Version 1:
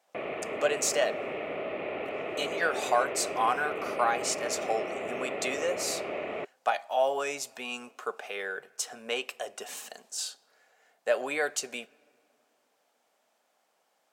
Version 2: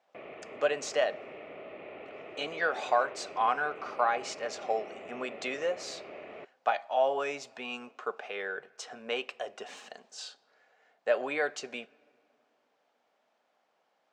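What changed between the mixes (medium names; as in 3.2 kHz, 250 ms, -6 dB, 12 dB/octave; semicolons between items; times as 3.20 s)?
speech: add distance through air 150 m; background -10.5 dB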